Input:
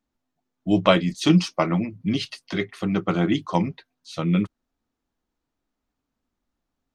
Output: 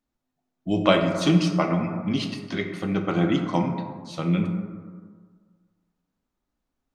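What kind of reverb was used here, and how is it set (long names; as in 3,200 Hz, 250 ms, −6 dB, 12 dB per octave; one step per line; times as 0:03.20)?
dense smooth reverb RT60 1.7 s, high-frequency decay 0.35×, DRR 3.5 dB
level −2.5 dB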